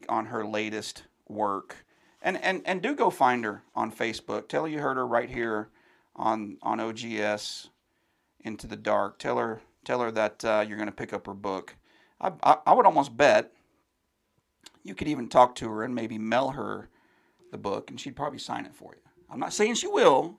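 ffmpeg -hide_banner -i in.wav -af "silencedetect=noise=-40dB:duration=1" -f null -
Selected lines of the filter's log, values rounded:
silence_start: 13.45
silence_end: 14.66 | silence_duration: 1.21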